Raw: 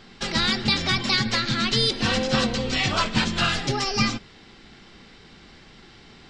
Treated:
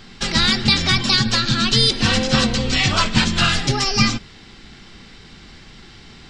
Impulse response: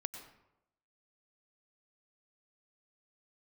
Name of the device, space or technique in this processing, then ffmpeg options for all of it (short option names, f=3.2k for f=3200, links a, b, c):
smiley-face EQ: -filter_complex "[0:a]lowshelf=f=130:g=5,equalizer=f=530:t=o:w=1.7:g=-3.5,highshelf=f=7.2k:g=6.5,asettb=1/sr,asplit=3[a][b][c];[a]atrim=end=1.044[d];[b]atrim=start=1.04:end=1.75,asetpts=PTS-STARTPTS,afade=t=in:d=0.004:c=qsin,afade=t=out:st=0.706:d=0.004:c=qsin,bandreject=f=2.1k:w=5.2[e];[c]atrim=start=1.746[f];[d][e]acrossfade=d=0.004:c1=hsin:c2=qsin[g];[g][f]acrossfade=d=0.004:c1=qsin:c2=hsin,volume=5dB"